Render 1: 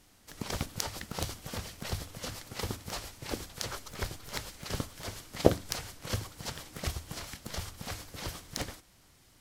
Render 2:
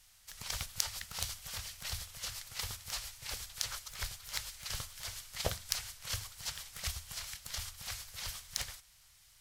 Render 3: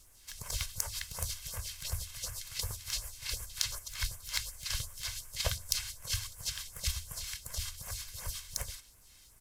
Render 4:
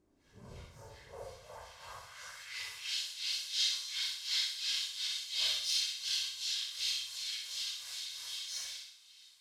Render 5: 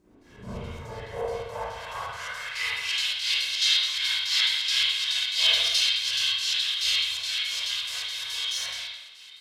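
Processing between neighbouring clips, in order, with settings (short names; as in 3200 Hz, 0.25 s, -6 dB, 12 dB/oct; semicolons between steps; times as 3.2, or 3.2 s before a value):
passive tone stack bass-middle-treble 10-0-10; gain +2.5 dB
comb 1.9 ms, depth 48%; phaser stages 2, 2.7 Hz, lowest notch 300–3800 Hz; added noise pink -74 dBFS; gain +2.5 dB
phase scrambler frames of 0.2 s; band-pass sweep 300 Hz -> 3600 Hz, 0.78–3.07; flutter echo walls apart 10.7 m, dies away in 0.61 s; gain +8 dB
chopper 4.7 Hz, depth 65%, duty 70%; reverb RT60 0.80 s, pre-delay 36 ms, DRR -9 dB; gain +7.5 dB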